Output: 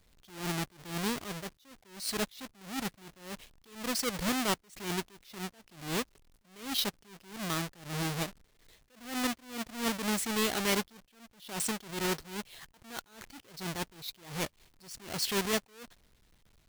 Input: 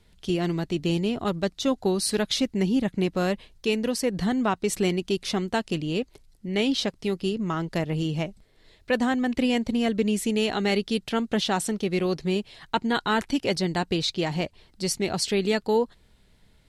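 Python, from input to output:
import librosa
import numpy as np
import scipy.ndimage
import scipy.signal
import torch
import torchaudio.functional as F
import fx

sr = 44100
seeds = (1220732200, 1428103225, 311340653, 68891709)

y = fx.halfwave_hold(x, sr)
y = fx.tilt_shelf(y, sr, db=-4.5, hz=1200.0)
y = fx.attack_slew(y, sr, db_per_s=120.0)
y = y * librosa.db_to_amplitude(-8.0)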